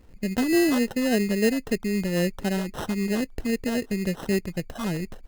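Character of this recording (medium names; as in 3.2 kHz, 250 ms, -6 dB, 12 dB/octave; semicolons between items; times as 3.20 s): phasing stages 6, 3.7 Hz, lowest notch 670–2300 Hz; aliases and images of a low sample rate 2.3 kHz, jitter 0%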